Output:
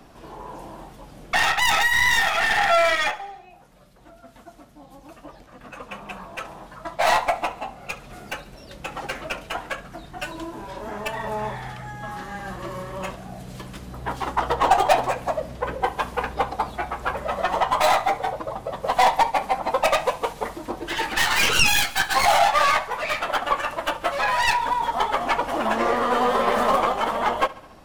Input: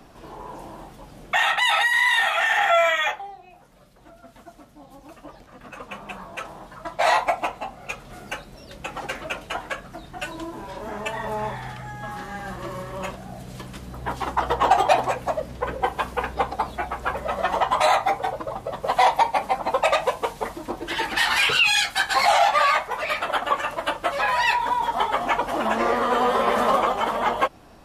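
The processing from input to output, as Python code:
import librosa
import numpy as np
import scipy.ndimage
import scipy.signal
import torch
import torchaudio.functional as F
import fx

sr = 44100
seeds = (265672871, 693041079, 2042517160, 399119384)

y = fx.tracing_dist(x, sr, depth_ms=0.15)
y = fx.echo_feedback(y, sr, ms=70, feedback_pct=60, wet_db=-20)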